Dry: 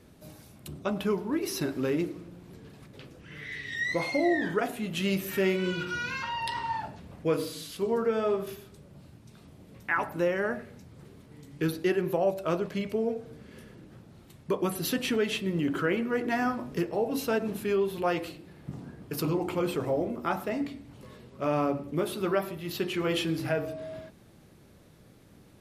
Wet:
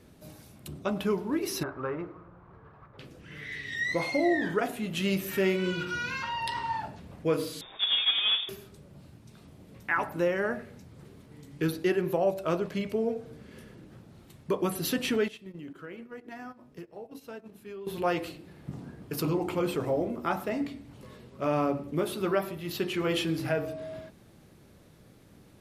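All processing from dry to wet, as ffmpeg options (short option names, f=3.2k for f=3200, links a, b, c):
-filter_complex "[0:a]asettb=1/sr,asplit=3[a][b][c];[a]atrim=end=1.634[d];[b]atrim=start=1.63:end=2.99,asetpts=PTS-STARTPTS,afade=t=in:d=0.004:c=qsin,afade=t=out:st=1.356:d=0.004:c=qsin,lowpass=f=1.2k:t=q:w=3.3,equalizer=f=250:t=o:w=1.4:g=-12.5[e];[c]atrim=start=2.986[f];[d][e]acrossfade=d=0.004:c1=hsin:c2=qsin[g];[g][f]acrossfade=d=0.004:c1=qsin:c2=hsin,asettb=1/sr,asplit=3[h][i][j];[h]atrim=end=7.614[k];[i]atrim=start=7.61:end=8.49,asetpts=PTS-STARTPTS,afade=t=in:d=0.004:c=qsin,afade=t=out:st=0.876:d=0.004:c=qsin,acrusher=bits=2:mode=log:mix=0:aa=0.000001,lowpass=f=3.2k:t=q:w=0.5098,lowpass=f=3.2k:t=q:w=0.6013,lowpass=f=3.2k:t=q:w=0.9,lowpass=f=3.2k:t=q:w=2.563,afreqshift=-3800[l];[j]atrim=start=8.486[m];[k][l]acrossfade=d=0.004:c1=hsin:c2=qsin[n];[n][m]acrossfade=d=0.004:c1=qsin:c2=hsin,asettb=1/sr,asplit=3[o][p][q];[o]atrim=end=15.284[r];[p]atrim=start=15.28:end=17.87,asetpts=PTS-STARTPTS,afade=t=in:d=0.004:c=qsin,afade=t=out:st=2.586:d=0.004:c=qsin,agate=range=-16dB:threshold=-30dB:ratio=16:release=100:detection=peak,acompressor=threshold=-44dB:ratio=3:attack=3.2:release=140:knee=1:detection=peak[s];[q]atrim=start=17.866[t];[r][s]acrossfade=d=0.004:c1=hsin:c2=qsin[u];[u][t]acrossfade=d=0.004:c1=qsin:c2=hsin"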